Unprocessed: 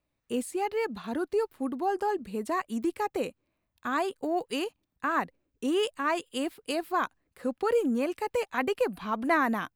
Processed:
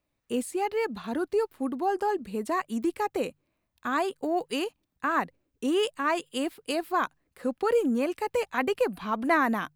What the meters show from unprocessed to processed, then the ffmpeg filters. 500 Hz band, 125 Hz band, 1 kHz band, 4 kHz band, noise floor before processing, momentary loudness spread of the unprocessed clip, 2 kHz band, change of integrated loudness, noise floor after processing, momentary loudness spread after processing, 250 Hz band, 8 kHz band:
+1.5 dB, +1.5 dB, +1.5 dB, +1.5 dB, −81 dBFS, 8 LU, +1.5 dB, +1.5 dB, −79 dBFS, 8 LU, +1.5 dB, +1.5 dB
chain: -af "bandreject=frequency=50:width_type=h:width=6,bandreject=frequency=100:width_type=h:width=6,bandreject=frequency=150:width_type=h:width=6,volume=1.5dB"

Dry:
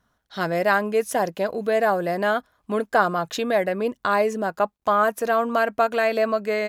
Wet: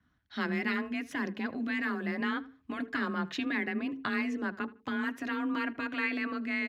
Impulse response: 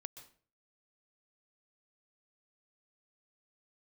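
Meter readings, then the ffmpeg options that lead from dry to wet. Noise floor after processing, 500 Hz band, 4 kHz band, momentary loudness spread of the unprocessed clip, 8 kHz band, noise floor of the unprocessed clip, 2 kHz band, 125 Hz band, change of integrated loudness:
−71 dBFS, −20.5 dB, −7.0 dB, 5 LU, below −15 dB, −74 dBFS, −6.5 dB, −9.0 dB, −11.0 dB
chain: -filter_complex "[0:a]bandreject=frequency=60:width_type=h:width=6,bandreject=frequency=120:width_type=h:width=6,bandreject=frequency=180:width_type=h:width=6,bandreject=frequency=240:width_type=h:width=6,bandreject=frequency=300:width_type=h:width=6,bandreject=frequency=360:width_type=h:width=6,bandreject=frequency=420:width_type=h:width=6,afftfilt=real='re*lt(hypot(re,im),0.398)':imag='im*lt(hypot(re,im),0.398)':win_size=1024:overlap=0.75,firequalizer=gain_entry='entry(260,0);entry(470,-14);entry(1900,-1);entry(9100,-21)':delay=0.05:min_phase=1,afreqshift=27,asplit=2[link_01][link_02];[link_02]adelay=78,lowpass=frequency=2700:poles=1,volume=-19dB,asplit=2[link_03][link_04];[link_04]adelay=78,lowpass=frequency=2700:poles=1,volume=0.27[link_05];[link_01][link_03][link_05]amix=inputs=3:normalize=0,adynamicequalizer=threshold=0.00398:dfrequency=3100:dqfactor=0.7:tfrequency=3100:tqfactor=0.7:attack=5:release=100:ratio=0.375:range=2:mode=cutabove:tftype=highshelf"

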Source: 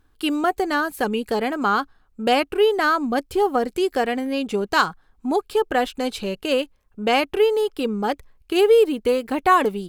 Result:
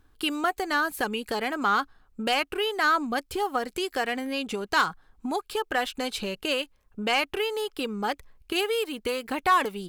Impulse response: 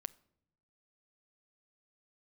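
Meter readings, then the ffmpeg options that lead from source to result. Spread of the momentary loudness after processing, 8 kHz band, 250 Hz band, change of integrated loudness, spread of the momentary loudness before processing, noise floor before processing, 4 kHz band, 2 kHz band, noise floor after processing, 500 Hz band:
8 LU, −0.5 dB, −8.0 dB, −6.0 dB, 8 LU, −60 dBFS, −1.0 dB, −2.0 dB, −64 dBFS, −10.5 dB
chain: -filter_complex "[0:a]acrossover=split=930[link_01][link_02];[link_01]acompressor=threshold=-30dB:ratio=6[link_03];[link_02]asoftclip=type=tanh:threshold=-15.5dB[link_04];[link_03][link_04]amix=inputs=2:normalize=0"

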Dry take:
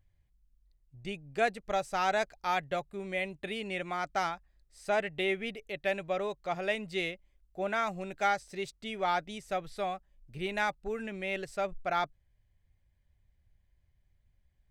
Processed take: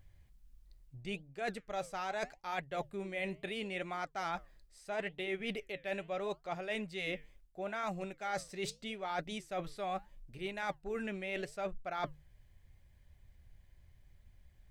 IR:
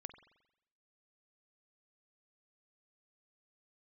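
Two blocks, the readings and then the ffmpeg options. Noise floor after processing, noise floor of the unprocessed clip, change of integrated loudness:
−65 dBFS, −72 dBFS, −6.5 dB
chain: -af "bandreject=frequency=50:width_type=h:width=6,bandreject=frequency=100:width_type=h:width=6,bandreject=frequency=150:width_type=h:width=6,areverse,acompressor=threshold=-45dB:ratio=8,areverse,flanger=delay=1.2:depth=8.8:regen=-83:speed=0.76:shape=triangular,volume=13.5dB"

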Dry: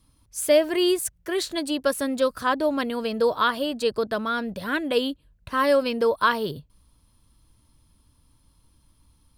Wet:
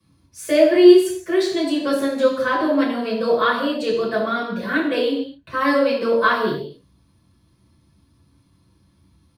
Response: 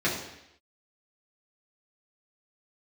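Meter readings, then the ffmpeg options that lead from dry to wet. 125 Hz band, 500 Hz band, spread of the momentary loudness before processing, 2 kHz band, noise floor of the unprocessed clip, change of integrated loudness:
+4.0 dB, +5.5 dB, 8 LU, +4.5 dB, −63 dBFS, +5.5 dB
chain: -filter_complex "[0:a]acrossover=split=200[link_01][link_02];[link_01]acompressor=threshold=-49dB:ratio=6[link_03];[link_03][link_02]amix=inputs=2:normalize=0,asplit=2[link_04][link_05];[link_05]adelay=32,volume=-13.5dB[link_06];[link_04][link_06]amix=inputs=2:normalize=0[link_07];[1:a]atrim=start_sample=2205,afade=type=out:start_time=0.32:duration=0.01,atrim=end_sample=14553[link_08];[link_07][link_08]afir=irnorm=-1:irlink=0,volume=-8dB"

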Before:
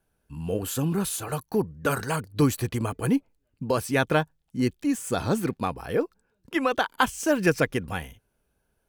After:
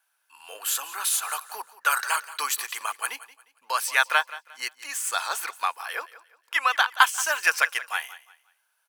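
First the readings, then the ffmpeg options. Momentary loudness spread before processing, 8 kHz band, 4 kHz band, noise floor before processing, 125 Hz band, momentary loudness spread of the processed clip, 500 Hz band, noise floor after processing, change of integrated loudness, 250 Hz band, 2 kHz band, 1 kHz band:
9 LU, +7.0 dB, +7.0 dB, −75 dBFS, below −40 dB, 13 LU, −14.0 dB, −73 dBFS, +1.0 dB, below −35 dB, +7.0 dB, +4.0 dB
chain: -af "highpass=frequency=980:width=0.5412,highpass=frequency=980:width=1.3066,aecho=1:1:177|354|531:0.141|0.0424|0.0127,volume=7dB"

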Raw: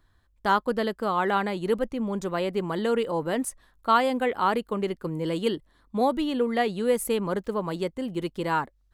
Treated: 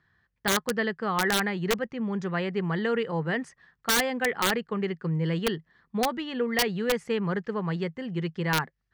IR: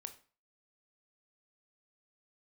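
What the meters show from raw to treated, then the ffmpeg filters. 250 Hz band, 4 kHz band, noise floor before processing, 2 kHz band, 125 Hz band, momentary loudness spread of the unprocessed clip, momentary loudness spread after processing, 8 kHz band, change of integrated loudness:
−1.0 dB, +5.0 dB, −65 dBFS, +4.0 dB, +5.0 dB, 7 LU, 7 LU, +6.0 dB, −1.0 dB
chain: -af "highpass=120,equalizer=frequency=160:width_type=q:width=4:gain=9,equalizer=frequency=290:width_type=q:width=4:gain=-10,equalizer=frequency=590:width_type=q:width=4:gain=-8,equalizer=frequency=980:width_type=q:width=4:gain=-4,equalizer=frequency=1800:width_type=q:width=4:gain=9,equalizer=frequency=3800:width_type=q:width=4:gain=-7,lowpass=frequency=5300:width=0.5412,lowpass=frequency=5300:width=1.3066,aeval=exprs='(mod(6.31*val(0)+1,2)-1)/6.31':channel_layout=same"

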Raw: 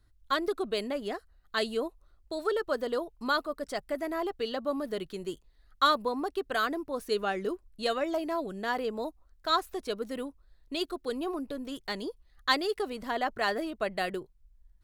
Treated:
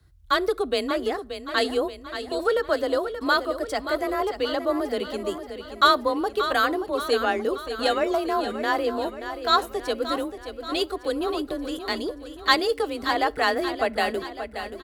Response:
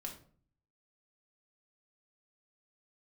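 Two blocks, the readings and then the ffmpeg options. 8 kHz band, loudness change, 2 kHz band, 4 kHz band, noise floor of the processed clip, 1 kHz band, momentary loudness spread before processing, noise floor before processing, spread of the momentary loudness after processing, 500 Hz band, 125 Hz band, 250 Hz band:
+7.0 dB, +7.0 dB, +7.5 dB, +7.0 dB, −43 dBFS, +7.5 dB, 10 LU, −64 dBFS, 9 LU, +7.5 dB, can't be measured, +6.0 dB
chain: -filter_complex "[0:a]afreqshift=31,aecho=1:1:579|1158|1737|2316|2895|3474:0.316|0.168|0.0888|0.0471|0.025|0.0132,asplit=2[link_01][link_02];[1:a]atrim=start_sample=2205[link_03];[link_02][link_03]afir=irnorm=-1:irlink=0,volume=-17dB[link_04];[link_01][link_04]amix=inputs=2:normalize=0,volume=6dB"

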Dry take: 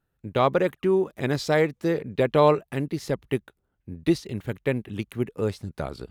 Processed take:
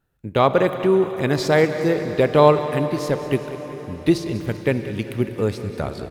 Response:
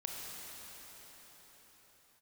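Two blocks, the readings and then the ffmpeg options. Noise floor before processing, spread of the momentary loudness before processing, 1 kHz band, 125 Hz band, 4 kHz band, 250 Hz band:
−76 dBFS, 12 LU, +5.5 dB, +5.0 dB, +5.0 dB, +5.0 dB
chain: -filter_complex "[0:a]aecho=1:1:194|388|582|776|970|1164:0.178|0.101|0.0578|0.0329|0.0188|0.0107,asplit=2[link_01][link_02];[1:a]atrim=start_sample=2205[link_03];[link_02][link_03]afir=irnorm=-1:irlink=0,volume=-6dB[link_04];[link_01][link_04]amix=inputs=2:normalize=0,volume=2dB"

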